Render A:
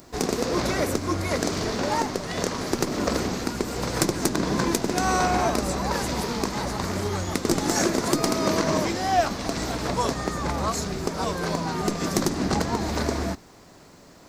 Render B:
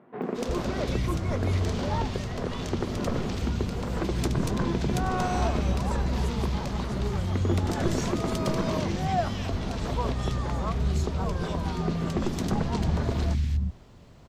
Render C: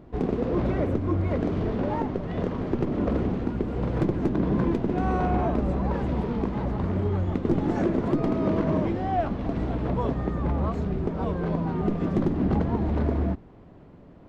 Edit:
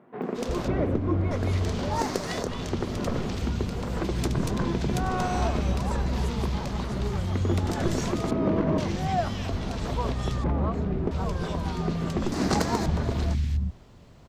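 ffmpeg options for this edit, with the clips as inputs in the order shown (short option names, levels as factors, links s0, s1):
-filter_complex "[2:a]asplit=3[s0][s1][s2];[0:a]asplit=2[s3][s4];[1:a]asplit=6[s5][s6][s7][s8][s9][s10];[s5]atrim=end=0.682[s11];[s0]atrim=start=0.678:end=1.312[s12];[s6]atrim=start=1.308:end=2.06[s13];[s3]atrim=start=1.9:end=2.49[s14];[s7]atrim=start=2.33:end=8.312[s15];[s1]atrim=start=8.308:end=8.782[s16];[s8]atrim=start=8.778:end=10.442[s17];[s2]atrim=start=10.438:end=11.112[s18];[s9]atrim=start=11.108:end=12.322[s19];[s4]atrim=start=12.318:end=12.862[s20];[s10]atrim=start=12.858[s21];[s11][s12]acrossfade=d=0.004:c1=hsin:c2=hsin[s22];[s22][s13]acrossfade=d=0.004:c1=hsin:c2=hsin[s23];[s23][s14]acrossfade=d=0.16:c1=tri:c2=tri[s24];[s24][s15]acrossfade=d=0.16:c1=tri:c2=tri[s25];[s25][s16]acrossfade=d=0.004:c1=hsin:c2=hsin[s26];[s26][s17]acrossfade=d=0.004:c1=hsin:c2=hsin[s27];[s27][s18]acrossfade=d=0.004:c1=hsin:c2=hsin[s28];[s28][s19]acrossfade=d=0.004:c1=hsin:c2=hsin[s29];[s29][s20]acrossfade=d=0.004:c1=hsin:c2=hsin[s30];[s30][s21]acrossfade=d=0.004:c1=hsin:c2=hsin"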